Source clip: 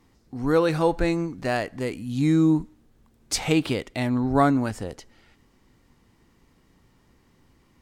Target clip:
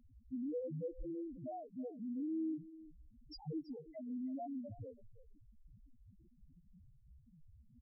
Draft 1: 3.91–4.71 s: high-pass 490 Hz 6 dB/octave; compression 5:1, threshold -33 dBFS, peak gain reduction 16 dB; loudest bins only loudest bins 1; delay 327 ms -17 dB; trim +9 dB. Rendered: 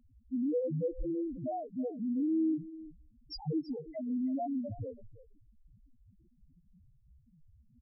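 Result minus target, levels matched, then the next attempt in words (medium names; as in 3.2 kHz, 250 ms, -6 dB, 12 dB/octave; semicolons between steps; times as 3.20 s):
compression: peak gain reduction -9 dB
3.91–4.71 s: high-pass 490 Hz 6 dB/octave; compression 5:1, threshold -44 dBFS, peak gain reduction 25 dB; loudest bins only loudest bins 1; delay 327 ms -17 dB; trim +9 dB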